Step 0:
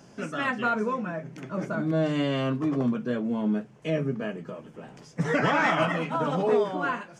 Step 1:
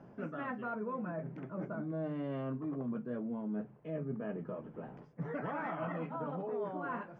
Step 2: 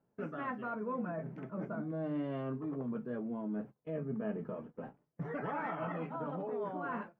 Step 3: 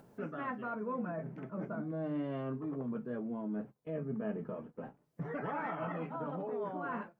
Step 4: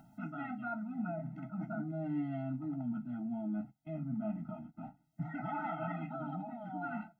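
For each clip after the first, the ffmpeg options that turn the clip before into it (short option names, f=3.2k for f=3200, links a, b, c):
-af "lowpass=1.3k,areverse,acompressor=threshold=-34dB:ratio=6,areverse,volume=-2dB"
-af "agate=range=-23dB:threshold=-46dB:ratio=16:detection=peak,flanger=delay=2.2:depth=2.4:regen=72:speed=0.35:shape=sinusoidal,volume=5dB"
-af "acompressor=mode=upward:threshold=-45dB:ratio=2.5"
-af "afftfilt=real='re*eq(mod(floor(b*sr/1024/310),2),0)':imag='im*eq(mod(floor(b*sr/1024/310),2),0)':win_size=1024:overlap=0.75,volume=1.5dB"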